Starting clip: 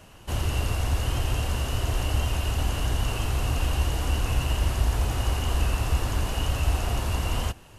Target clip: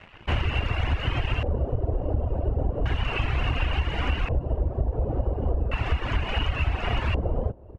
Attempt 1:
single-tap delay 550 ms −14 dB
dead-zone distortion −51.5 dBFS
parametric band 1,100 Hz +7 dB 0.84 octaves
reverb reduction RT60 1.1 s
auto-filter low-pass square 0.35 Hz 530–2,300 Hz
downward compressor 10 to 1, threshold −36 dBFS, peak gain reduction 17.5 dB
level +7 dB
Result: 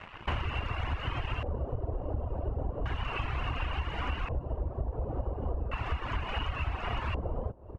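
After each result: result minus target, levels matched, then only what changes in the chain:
downward compressor: peak gain reduction +8 dB; 1,000 Hz band +4.0 dB
change: downward compressor 10 to 1, threshold −27 dBFS, peak gain reduction 9.5 dB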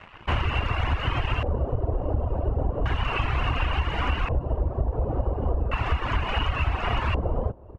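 1,000 Hz band +4.0 dB
remove: parametric band 1,100 Hz +7 dB 0.84 octaves

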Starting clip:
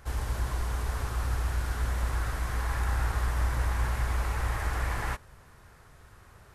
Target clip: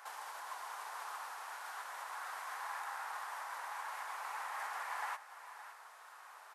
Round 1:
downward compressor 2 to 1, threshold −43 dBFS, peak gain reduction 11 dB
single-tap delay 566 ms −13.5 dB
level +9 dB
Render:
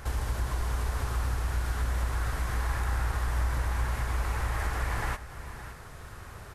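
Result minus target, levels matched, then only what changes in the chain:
1,000 Hz band −8.5 dB
add after downward compressor: four-pole ladder high-pass 730 Hz, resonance 45%

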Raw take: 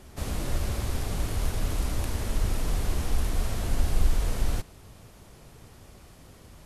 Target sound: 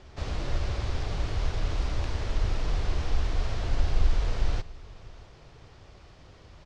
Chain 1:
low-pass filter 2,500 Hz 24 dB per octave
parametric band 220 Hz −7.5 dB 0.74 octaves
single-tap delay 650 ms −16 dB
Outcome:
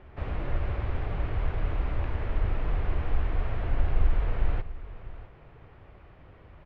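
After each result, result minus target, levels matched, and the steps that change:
4,000 Hz band −11.0 dB; echo-to-direct +6.5 dB
change: low-pass filter 5,500 Hz 24 dB per octave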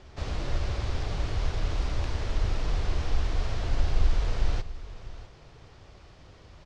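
echo-to-direct +6.5 dB
change: single-tap delay 650 ms −22.5 dB

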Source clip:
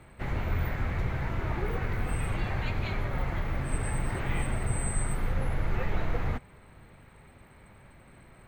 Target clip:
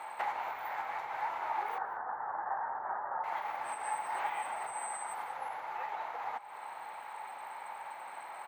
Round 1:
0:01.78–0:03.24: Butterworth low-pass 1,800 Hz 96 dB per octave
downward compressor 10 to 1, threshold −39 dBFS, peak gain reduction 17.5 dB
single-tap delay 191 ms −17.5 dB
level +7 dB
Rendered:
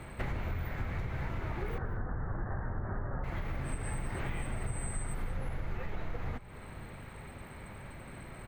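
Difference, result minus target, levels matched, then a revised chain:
1,000 Hz band −10.5 dB
0:01.78–0:03.24: Butterworth low-pass 1,800 Hz 96 dB per octave
downward compressor 10 to 1, threshold −39 dBFS, peak gain reduction 17.5 dB
high-pass with resonance 850 Hz, resonance Q 6.4
single-tap delay 191 ms −17.5 dB
level +7 dB

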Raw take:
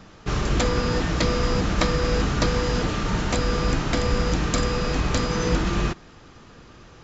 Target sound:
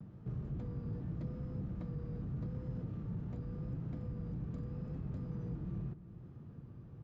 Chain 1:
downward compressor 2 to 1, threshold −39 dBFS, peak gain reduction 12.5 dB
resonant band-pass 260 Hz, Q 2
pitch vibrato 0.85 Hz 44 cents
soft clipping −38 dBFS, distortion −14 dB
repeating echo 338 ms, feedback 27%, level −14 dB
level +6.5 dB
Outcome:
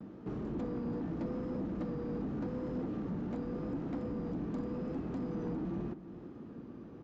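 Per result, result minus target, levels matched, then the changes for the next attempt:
125 Hz band −7.0 dB; downward compressor: peak gain reduction −4.5 dB
change: resonant band-pass 130 Hz, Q 2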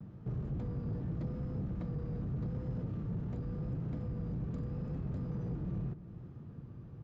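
downward compressor: peak gain reduction −4.5 dB
change: downward compressor 2 to 1, threshold −48.5 dBFS, peak gain reduction 17.5 dB

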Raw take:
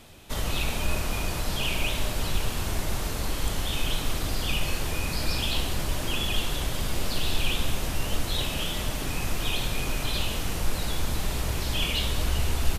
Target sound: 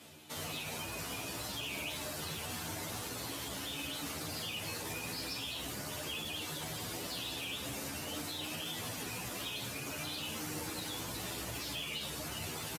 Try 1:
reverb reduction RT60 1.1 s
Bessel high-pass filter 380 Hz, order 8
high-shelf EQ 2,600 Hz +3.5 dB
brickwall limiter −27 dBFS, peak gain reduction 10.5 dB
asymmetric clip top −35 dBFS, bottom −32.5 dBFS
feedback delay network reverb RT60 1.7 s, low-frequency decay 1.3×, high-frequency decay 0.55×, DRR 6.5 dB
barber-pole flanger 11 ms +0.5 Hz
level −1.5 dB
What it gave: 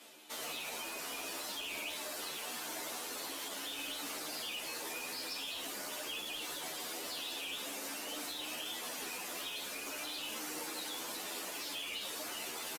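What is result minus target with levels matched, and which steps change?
125 Hz band −19.5 dB; asymmetric clip: distortion +5 dB
change: Bessel high-pass filter 130 Hz, order 8
change: asymmetric clip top −28.5 dBFS, bottom −32.5 dBFS

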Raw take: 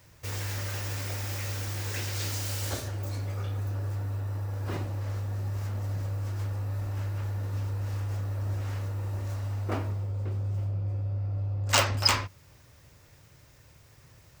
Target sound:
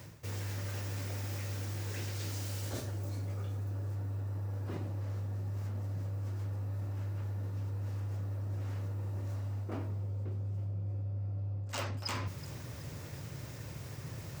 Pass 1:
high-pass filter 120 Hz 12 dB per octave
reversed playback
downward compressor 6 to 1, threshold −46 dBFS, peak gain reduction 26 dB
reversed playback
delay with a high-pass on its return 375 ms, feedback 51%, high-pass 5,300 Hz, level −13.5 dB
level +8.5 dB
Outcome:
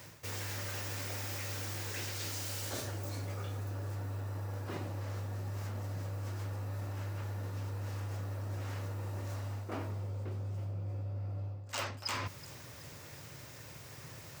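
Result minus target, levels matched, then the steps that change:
500 Hz band +2.5 dB
add after high-pass filter: low-shelf EQ 410 Hz +10.5 dB

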